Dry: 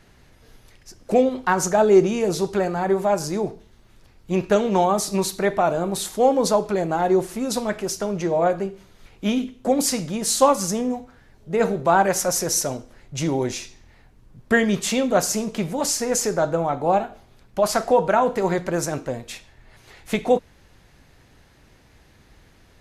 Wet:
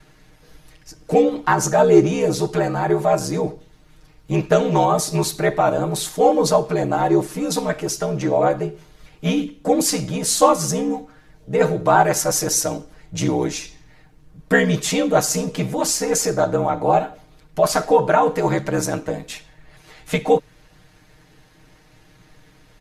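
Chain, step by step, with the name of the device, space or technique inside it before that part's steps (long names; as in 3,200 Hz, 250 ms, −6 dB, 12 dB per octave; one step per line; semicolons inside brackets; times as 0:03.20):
ring-modulated robot voice (ring modulation 34 Hz; comb filter 6.5 ms, depth 99%)
level +2.5 dB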